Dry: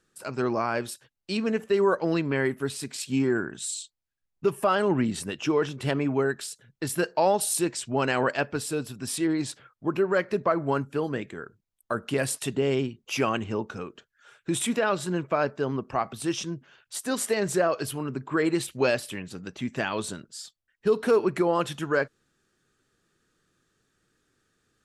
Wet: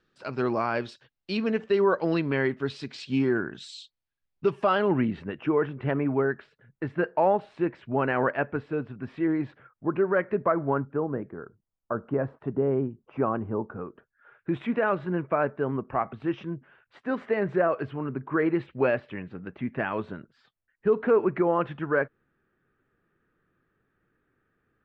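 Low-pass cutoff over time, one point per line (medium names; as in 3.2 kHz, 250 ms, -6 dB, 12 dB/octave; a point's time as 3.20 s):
low-pass 24 dB/octave
4.60 s 4.5 kHz
5.33 s 2.1 kHz
10.45 s 2.1 kHz
11.16 s 1.3 kHz
13.64 s 1.3 kHz
14.59 s 2.2 kHz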